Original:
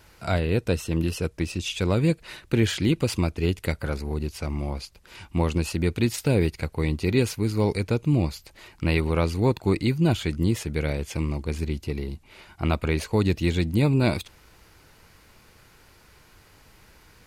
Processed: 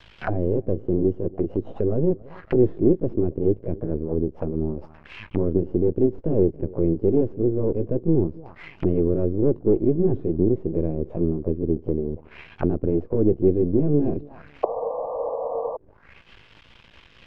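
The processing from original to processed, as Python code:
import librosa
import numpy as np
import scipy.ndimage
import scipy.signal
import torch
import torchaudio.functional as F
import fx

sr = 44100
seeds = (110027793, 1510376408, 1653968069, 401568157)

p1 = fx.pitch_heads(x, sr, semitones=1.5)
p2 = p1 + fx.echo_feedback(p1, sr, ms=278, feedback_pct=36, wet_db=-23.0, dry=0)
p3 = np.maximum(p2, 0.0)
p4 = fx.spec_paint(p3, sr, seeds[0], shape='noise', start_s=14.63, length_s=1.14, low_hz=450.0, high_hz=1200.0, level_db=-26.0)
p5 = 10.0 ** (-23.0 / 20.0) * np.tanh(p4 / 10.0 ** (-23.0 / 20.0))
p6 = p4 + (p5 * librosa.db_to_amplitude(-9.5))
p7 = fx.envelope_lowpass(p6, sr, base_hz=370.0, top_hz=3600.0, q=2.9, full_db=-26.5, direction='down')
y = p7 * librosa.db_to_amplitude(3.0)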